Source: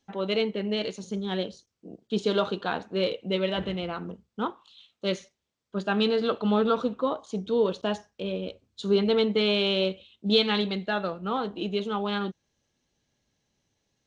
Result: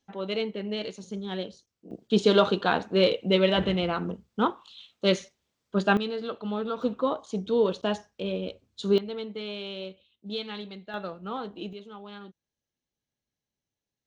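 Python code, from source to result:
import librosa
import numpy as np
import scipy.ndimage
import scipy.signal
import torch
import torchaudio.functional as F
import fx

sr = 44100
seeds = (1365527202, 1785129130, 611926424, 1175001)

y = fx.gain(x, sr, db=fx.steps((0.0, -3.5), (1.91, 5.0), (5.97, -7.5), (6.82, 0.5), (8.98, -12.0), (10.94, -5.5), (11.73, -14.5)))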